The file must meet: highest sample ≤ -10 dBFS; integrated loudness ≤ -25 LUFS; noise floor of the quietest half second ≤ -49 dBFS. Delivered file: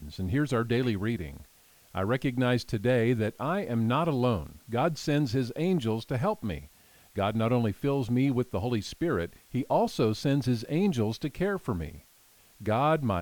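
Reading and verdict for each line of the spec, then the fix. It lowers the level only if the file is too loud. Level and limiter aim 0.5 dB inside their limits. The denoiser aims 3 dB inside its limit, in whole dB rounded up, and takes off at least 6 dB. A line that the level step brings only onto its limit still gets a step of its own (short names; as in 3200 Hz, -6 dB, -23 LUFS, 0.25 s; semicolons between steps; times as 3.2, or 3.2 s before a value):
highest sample -13.5 dBFS: OK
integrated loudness -29.0 LUFS: OK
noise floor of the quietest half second -60 dBFS: OK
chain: none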